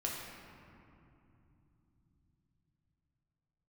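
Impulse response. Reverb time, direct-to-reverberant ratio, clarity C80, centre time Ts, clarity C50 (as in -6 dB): 2.8 s, -3.5 dB, 2.0 dB, 107 ms, 0.5 dB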